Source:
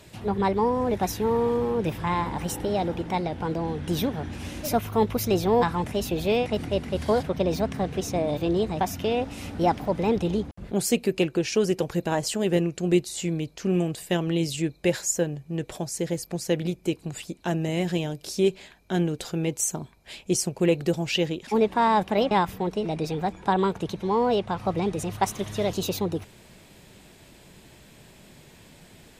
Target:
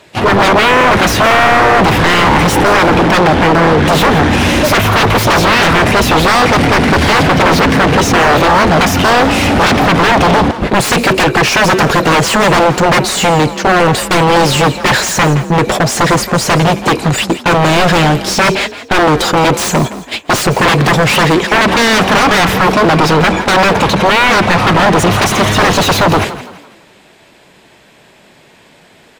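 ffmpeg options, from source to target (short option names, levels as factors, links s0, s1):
-filter_complex "[0:a]agate=range=0.0398:threshold=0.0126:ratio=16:detection=peak,aeval=exprs='0.355*sin(PI/2*8.91*val(0)/0.355)':c=same,asplit=2[s0][s1];[s1]highpass=f=720:p=1,volume=10,asoftclip=type=tanh:threshold=0.376[s2];[s0][s2]amix=inputs=2:normalize=0,lowpass=f=2100:p=1,volume=0.501,asplit=5[s3][s4][s5][s6][s7];[s4]adelay=167,afreqshift=42,volume=0.2[s8];[s5]adelay=334,afreqshift=84,volume=0.0741[s9];[s6]adelay=501,afreqshift=126,volume=0.0272[s10];[s7]adelay=668,afreqshift=168,volume=0.0101[s11];[s3][s8][s9][s10][s11]amix=inputs=5:normalize=0,volume=1.68"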